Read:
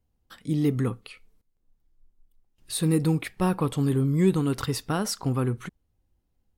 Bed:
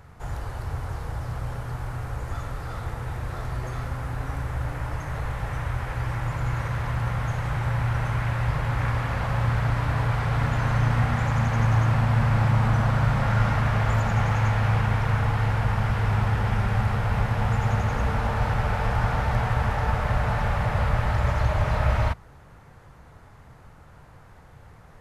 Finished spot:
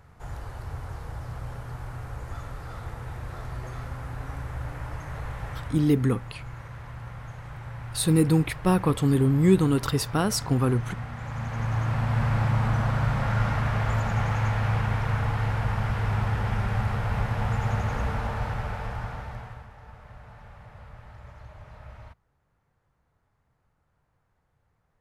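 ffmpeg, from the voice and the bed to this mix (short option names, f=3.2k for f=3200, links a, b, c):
-filter_complex "[0:a]adelay=5250,volume=2.5dB[a];[1:a]volume=5dB,afade=t=out:st=5.49:d=0.45:silence=0.398107,afade=t=in:st=11.15:d=1.1:silence=0.316228,afade=t=out:st=17.96:d=1.72:silence=0.1[b];[a][b]amix=inputs=2:normalize=0"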